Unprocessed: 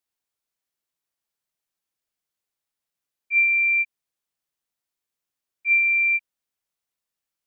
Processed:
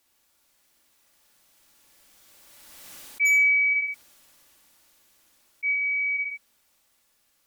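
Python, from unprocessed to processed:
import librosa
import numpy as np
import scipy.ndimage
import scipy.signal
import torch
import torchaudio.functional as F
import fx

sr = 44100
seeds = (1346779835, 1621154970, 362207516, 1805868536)

p1 = fx.doppler_pass(x, sr, speed_mps=13, closest_m=2.6, pass_at_s=2.97)
p2 = p1 + 0.33 * np.pad(p1, (int(3.5 * sr / 1000.0), 0))[:len(p1)]
p3 = fx.rider(p2, sr, range_db=10, speed_s=0.5)
p4 = p2 + (p3 * librosa.db_to_amplitude(2.5))
p5 = 10.0 ** (-13.0 / 20.0) * (np.abs((p4 / 10.0 ** (-13.0 / 20.0) + 3.0) % 4.0 - 2.0) - 1.0)
p6 = fx.echo_feedback(p5, sr, ms=60, feedback_pct=21, wet_db=-5.0)
p7 = fx.env_flatten(p6, sr, amount_pct=70)
y = p7 * librosa.db_to_amplitude(-5.0)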